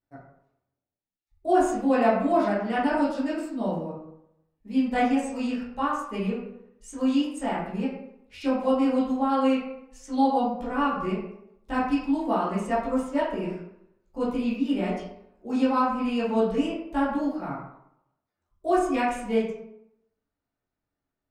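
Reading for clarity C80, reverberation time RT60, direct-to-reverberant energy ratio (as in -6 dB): 5.5 dB, 0.75 s, -10.0 dB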